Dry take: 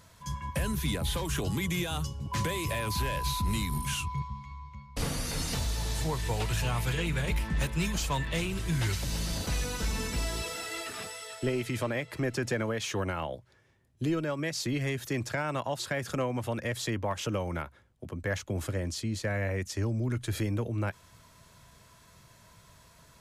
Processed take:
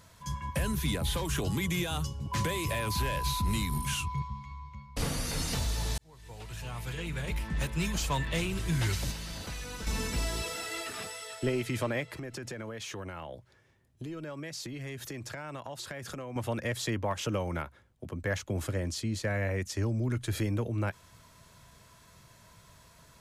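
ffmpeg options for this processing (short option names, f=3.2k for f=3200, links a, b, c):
-filter_complex "[0:a]asettb=1/sr,asplit=3[a][b][c];[a]atrim=end=9.114[d];[b]atrim=start=9.11:end=9.87,asetpts=PTS-STARTPTS,afade=t=in:d=0.004:c=qsin,afade=t=out:st=0.756:d=0.004:c=qsin,acrossover=split=910|3700[e][f][g];[e]acompressor=threshold=-40dB:ratio=4[h];[f]acompressor=threshold=-45dB:ratio=4[i];[g]acompressor=threshold=-48dB:ratio=4[j];[h][i][j]amix=inputs=3:normalize=0[k];[c]atrim=start=9.866[l];[d][k]acrossfade=d=0.004:c1=hsin:c2=qsin[m];[m][l]acrossfade=d=0.004:c1=qsin:c2=hsin,asettb=1/sr,asplit=3[n][o][p];[n]atrim=end=12.114[q];[o]atrim=start=12.11:end=16.36,asetpts=PTS-STARTPTS,afade=t=in:d=0.004:c=qsin,afade=t=out:st=4.246:d=0.004:c=qsin,acompressor=threshold=-37dB:ratio=5:attack=3.2:release=140:knee=1:detection=peak[r];[p]atrim=start=16.356[s];[q][r]acrossfade=d=0.004:c1=hsin:c2=qsin[t];[t][s]acrossfade=d=0.004:c1=qsin:c2=hsin,asplit=2[u][v];[u]atrim=end=5.98,asetpts=PTS-STARTPTS,afade=t=out:st=5.976:d=0.004:c=hsin[w];[v]atrim=start=5.98,asetpts=PTS-STARTPTS,afade=t=in:d=2.14[x];[w][x]concat=n=2:v=0:a=1"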